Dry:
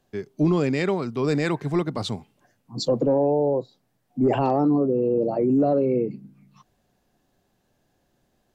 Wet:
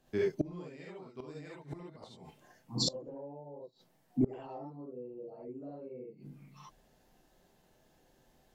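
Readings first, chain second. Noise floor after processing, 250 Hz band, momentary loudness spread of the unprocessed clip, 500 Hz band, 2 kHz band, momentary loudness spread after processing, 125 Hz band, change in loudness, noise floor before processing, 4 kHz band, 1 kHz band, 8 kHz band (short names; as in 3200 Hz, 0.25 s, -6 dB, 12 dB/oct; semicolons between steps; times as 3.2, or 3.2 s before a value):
-69 dBFS, -17.0 dB, 11 LU, -17.5 dB, under -15 dB, 20 LU, -16.0 dB, -16.5 dB, -70 dBFS, -4.0 dB, -22.5 dB, n/a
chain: non-linear reverb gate 90 ms rising, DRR -4.5 dB; flipped gate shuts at -15 dBFS, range -26 dB; gain -3.5 dB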